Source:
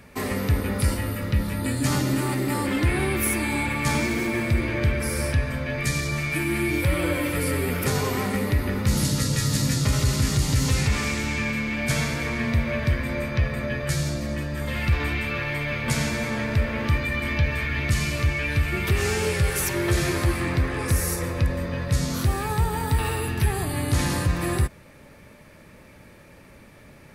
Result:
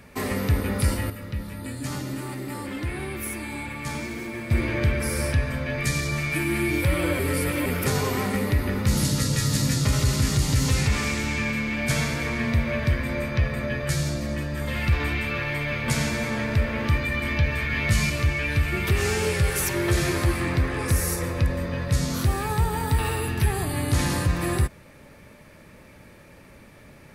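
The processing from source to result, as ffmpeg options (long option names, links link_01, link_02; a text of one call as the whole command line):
ffmpeg -i in.wav -filter_complex "[0:a]asettb=1/sr,asplit=3[link_01][link_02][link_03];[link_01]atrim=end=17.684[link_04];[link_02]atrim=start=17.68:end=18.1,asetpts=PTS-STARTPTS,afade=type=in:duration=0.004:curve=qsin,afade=type=out:start_time=0.416:duration=0.004:curve=qsin,asplit=2[link_05][link_06];[link_06]adelay=19,volume=-3dB[link_07];[link_05][link_07]amix=inputs=2:normalize=0,atrim=end_sample=18522[link_08];[link_03]atrim=start=18.096[link_09];[link_04][link_08]acrossfade=duration=0.004:curve1=hsin:curve2=qsin[link_10];[link_10][link_09]acrossfade=duration=0.004:curve1=qsin:curve2=hsin,asplit=5[link_11][link_12][link_13][link_14][link_15];[link_11]atrim=end=1.102[link_16];[link_12]atrim=start=1.098:end=4.512,asetpts=PTS-STARTPTS,volume=-8dB[link_17];[link_13]atrim=start=4.508:end=7.192[link_18];[link_14]atrim=start=7.188:end=7.662,asetpts=PTS-STARTPTS,areverse[link_19];[link_15]atrim=start=7.658[link_20];[link_16][link_17]acrossfade=duration=0.004:curve1=hsin:curve2=hsin[link_21];[link_21][link_18]acrossfade=duration=0.004:curve1=hsin:curve2=hsin[link_22];[link_22][link_19]acrossfade=duration=0.004:curve1=hsin:curve2=hsin[link_23];[link_23][link_20]acrossfade=duration=0.004:curve1=hsin:curve2=hsin" out.wav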